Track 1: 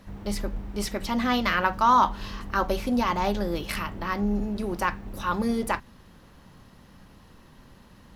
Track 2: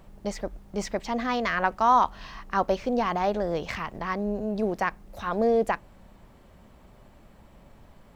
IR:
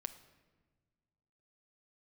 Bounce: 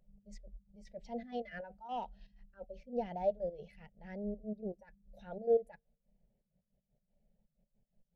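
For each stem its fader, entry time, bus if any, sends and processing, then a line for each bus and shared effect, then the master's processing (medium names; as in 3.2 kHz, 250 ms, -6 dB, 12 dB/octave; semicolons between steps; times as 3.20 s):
-14.0 dB, 0.00 s, no send, spectral contrast enhancement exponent 1.6; reverb removal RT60 0.51 s
-3.5 dB, 0.00 s, send -18 dB, trance gate "xx.x.x.x.xx" 159 bpm -12 dB; saturation -14.5 dBFS, distortion -17 dB; attacks held to a fixed rise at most 220 dB/s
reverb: on, RT60 1.5 s, pre-delay 7 ms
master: static phaser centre 300 Hz, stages 6; spectral contrast expander 1.5:1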